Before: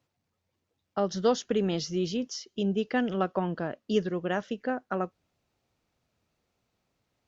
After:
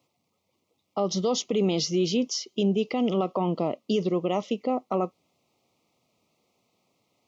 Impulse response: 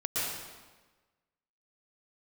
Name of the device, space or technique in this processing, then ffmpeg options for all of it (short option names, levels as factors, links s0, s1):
PA system with an anti-feedback notch: -af "highpass=170,asuperstop=centerf=1600:order=8:qfactor=2.2,alimiter=limit=0.0631:level=0:latency=1:release=36,volume=2.37"